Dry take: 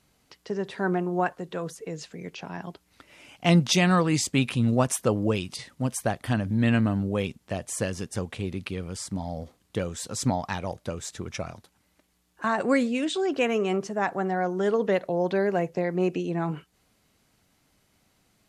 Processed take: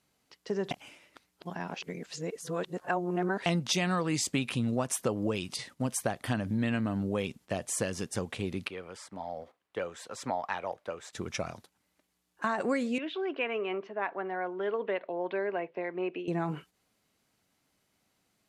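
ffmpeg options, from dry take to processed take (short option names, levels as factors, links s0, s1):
-filter_complex "[0:a]asettb=1/sr,asplit=3[s0][s1][s2];[s0]atrim=end=8.684[s3];[s1]atrim=start=8.68:end=11.13,asetpts=PTS-STARTPTS,afade=t=in:d=0.004:c=qsin,afade=t=out:st=2.446:d=0.004:c=qsin,acrossover=split=430 2900:gain=0.178 1 0.2[s4][s5][s6];[s4][s5][s6]amix=inputs=3:normalize=0[s7];[s2]atrim=start=11.126[s8];[s3][s7]acrossfade=d=0.004:c1=hsin:c2=qsin[s9];[s9][s8]acrossfade=d=0.004:c1=qsin:c2=hsin,asettb=1/sr,asplit=3[s10][s11][s12];[s10]atrim=end=12.984[s13];[s11]atrim=start=12.98:end=16.28,asetpts=PTS-STARTPTS,afade=t=in:d=0.004:c=qsin,afade=t=out:st=3.296:d=0.004:c=qsin,highpass=460,equalizer=f=510:t=q:w=4:g=-6,equalizer=f=770:t=q:w=4:g=-7,equalizer=f=1300:t=q:w=4:g=-5,equalizer=f=1800:t=q:w=4:g=-4,lowpass=f=2800:w=0.5412,lowpass=f=2800:w=1.3066[s14];[s12]atrim=start=16.276[s15];[s13][s14]acrossfade=d=0.004:c1=hsin:c2=qsin[s16];[s16][s15]acrossfade=d=0.004:c1=qsin:c2=hsin,asplit=3[s17][s18][s19];[s17]atrim=end=0.712[s20];[s18]atrim=start=0.708:end=3.462,asetpts=PTS-STARTPTS,areverse[s21];[s19]atrim=start=3.458[s22];[s20][s21]acrossfade=d=0.004:c1=hsin:c2=hsin[s23];[s23][s22]acrossfade=d=0.004:c1=hsin:c2=hsin,agate=range=0.447:threshold=0.00355:ratio=16:detection=peak,lowshelf=f=92:g=-11.5,acompressor=threshold=0.0501:ratio=5"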